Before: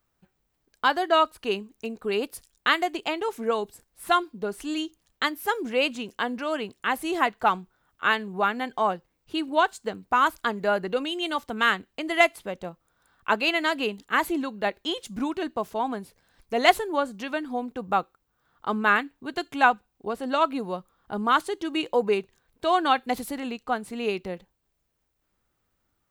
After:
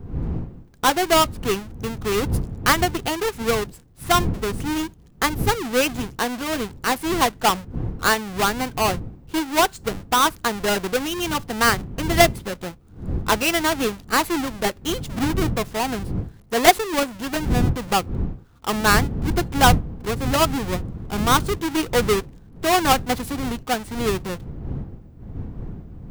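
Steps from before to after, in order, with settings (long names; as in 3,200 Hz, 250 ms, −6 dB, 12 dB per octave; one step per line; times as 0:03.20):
each half-wave held at its own peak
wind on the microphone 150 Hz −29 dBFS
notch filter 600 Hz, Q 12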